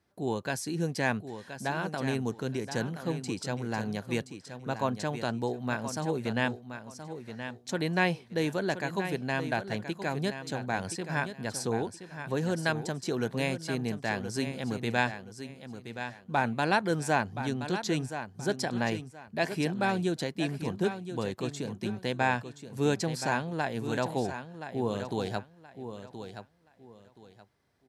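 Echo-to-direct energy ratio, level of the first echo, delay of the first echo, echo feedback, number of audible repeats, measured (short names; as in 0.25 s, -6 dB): -9.5 dB, -10.0 dB, 1.024 s, 25%, 3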